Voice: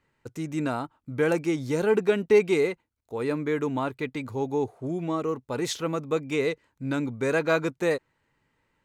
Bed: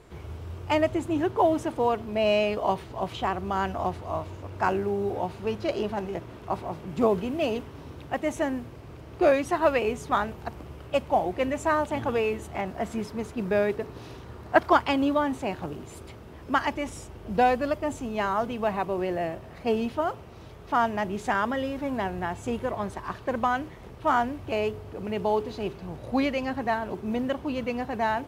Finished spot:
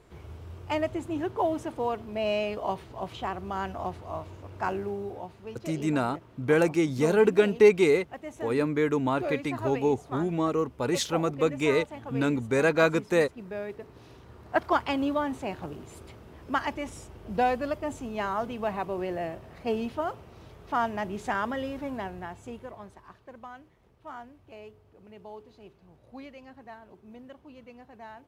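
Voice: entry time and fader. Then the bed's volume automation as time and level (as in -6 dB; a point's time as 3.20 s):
5.30 s, +1.5 dB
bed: 4.88 s -5 dB
5.36 s -12 dB
13.54 s -12 dB
14.94 s -3.5 dB
21.77 s -3.5 dB
23.34 s -19 dB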